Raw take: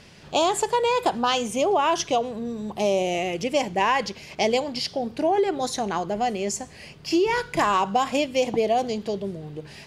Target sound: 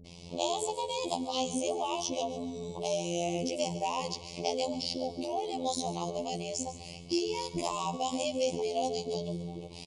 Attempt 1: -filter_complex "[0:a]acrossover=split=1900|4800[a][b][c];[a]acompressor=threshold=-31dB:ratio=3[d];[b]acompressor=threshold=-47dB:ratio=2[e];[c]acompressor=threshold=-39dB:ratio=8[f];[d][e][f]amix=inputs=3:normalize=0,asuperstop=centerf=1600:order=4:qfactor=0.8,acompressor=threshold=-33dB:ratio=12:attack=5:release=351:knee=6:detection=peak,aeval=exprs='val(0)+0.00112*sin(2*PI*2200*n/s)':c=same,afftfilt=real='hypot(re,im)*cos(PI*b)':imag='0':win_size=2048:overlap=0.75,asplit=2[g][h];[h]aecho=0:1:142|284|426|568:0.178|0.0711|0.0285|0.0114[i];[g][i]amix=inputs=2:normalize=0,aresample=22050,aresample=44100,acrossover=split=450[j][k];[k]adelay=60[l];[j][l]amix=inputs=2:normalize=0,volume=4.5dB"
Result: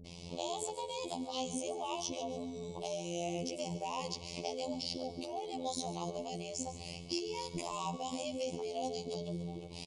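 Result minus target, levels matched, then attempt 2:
compressor: peak gain reduction +9.5 dB
-filter_complex "[0:a]acrossover=split=1900|4800[a][b][c];[a]acompressor=threshold=-31dB:ratio=3[d];[b]acompressor=threshold=-47dB:ratio=2[e];[c]acompressor=threshold=-39dB:ratio=8[f];[d][e][f]amix=inputs=3:normalize=0,asuperstop=centerf=1600:order=4:qfactor=0.8,aeval=exprs='val(0)+0.00112*sin(2*PI*2200*n/s)':c=same,afftfilt=real='hypot(re,im)*cos(PI*b)':imag='0':win_size=2048:overlap=0.75,asplit=2[g][h];[h]aecho=0:1:142|284|426|568:0.178|0.0711|0.0285|0.0114[i];[g][i]amix=inputs=2:normalize=0,aresample=22050,aresample=44100,acrossover=split=450[j][k];[k]adelay=60[l];[j][l]amix=inputs=2:normalize=0,volume=4.5dB"

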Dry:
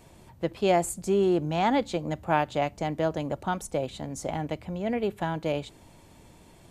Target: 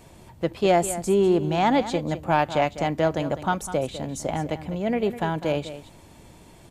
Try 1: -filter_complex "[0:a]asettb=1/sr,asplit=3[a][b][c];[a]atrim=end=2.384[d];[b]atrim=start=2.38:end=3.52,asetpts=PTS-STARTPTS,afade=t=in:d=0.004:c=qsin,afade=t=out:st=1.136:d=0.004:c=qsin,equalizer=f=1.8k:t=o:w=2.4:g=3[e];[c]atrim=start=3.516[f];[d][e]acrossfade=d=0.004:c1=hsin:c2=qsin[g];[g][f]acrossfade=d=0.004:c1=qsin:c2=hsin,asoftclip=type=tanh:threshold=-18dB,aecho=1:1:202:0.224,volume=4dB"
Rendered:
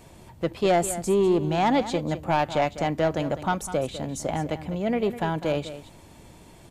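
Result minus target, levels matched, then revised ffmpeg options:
soft clip: distortion +10 dB
-filter_complex "[0:a]asettb=1/sr,asplit=3[a][b][c];[a]atrim=end=2.384[d];[b]atrim=start=2.38:end=3.52,asetpts=PTS-STARTPTS,afade=t=in:d=0.004:c=qsin,afade=t=out:st=1.136:d=0.004:c=qsin,equalizer=f=1.8k:t=o:w=2.4:g=3[e];[c]atrim=start=3.516[f];[d][e]acrossfade=d=0.004:c1=hsin:c2=qsin[g];[g][f]acrossfade=d=0.004:c1=qsin:c2=hsin,asoftclip=type=tanh:threshold=-11dB,aecho=1:1:202:0.224,volume=4dB"

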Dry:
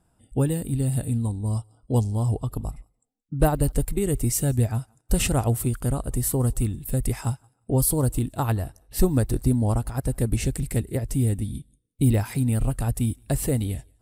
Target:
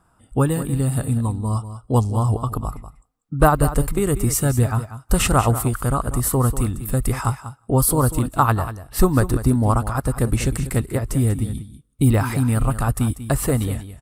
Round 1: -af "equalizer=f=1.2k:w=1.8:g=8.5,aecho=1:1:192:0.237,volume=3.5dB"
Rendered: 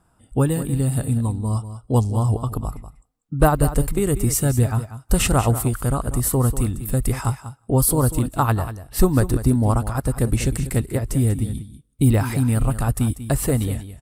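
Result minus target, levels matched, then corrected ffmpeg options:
1000 Hz band -3.0 dB
-af "equalizer=f=1.2k:w=1.8:g=14.5,aecho=1:1:192:0.237,volume=3.5dB"

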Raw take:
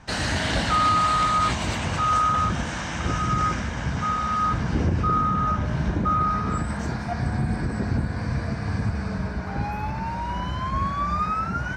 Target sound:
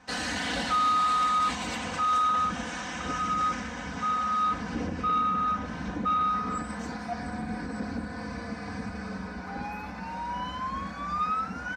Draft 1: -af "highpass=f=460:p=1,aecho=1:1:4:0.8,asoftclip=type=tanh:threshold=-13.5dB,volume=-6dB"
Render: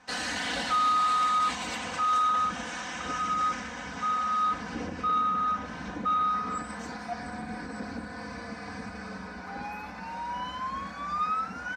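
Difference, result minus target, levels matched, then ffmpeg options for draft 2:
250 Hz band -4.0 dB
-af "highpass=f=200:p=1,aecho=1:1:4:0.8,asoftclip=type=tanh:threshold=-13.5dB,volume=-6dB"

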